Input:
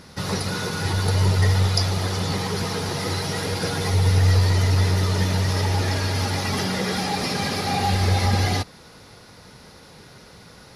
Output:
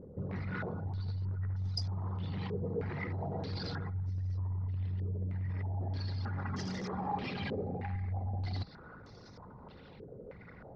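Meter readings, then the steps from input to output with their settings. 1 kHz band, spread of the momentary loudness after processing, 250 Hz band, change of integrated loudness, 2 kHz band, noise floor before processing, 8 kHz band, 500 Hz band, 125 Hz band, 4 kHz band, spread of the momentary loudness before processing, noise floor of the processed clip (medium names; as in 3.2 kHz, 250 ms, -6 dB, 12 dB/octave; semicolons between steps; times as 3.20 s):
-16.0 dB, 16 LU, -13.5 dB, -15.5 dB, -18.0 dB, -47 dBFS, under -25 dB, -14.5 dB, -14.5 dB, -21.5 dB, 7 LU, -53 dBFS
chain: resonances exaggerated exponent 2; distance through air 91 m; de-hum 161.8 Hz, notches 5; reverse; compression 16:1, threshold -26 dBFS, peak gain reduction 13 dB; reverse; wavefolder -24 dBFS; dynamic bell 490 Hz, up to -6 dB, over -45 dBFS, Q 1.1; step-sequenced low-pass 3.2 Hz 490–6300 Hz; trim -6.5 dB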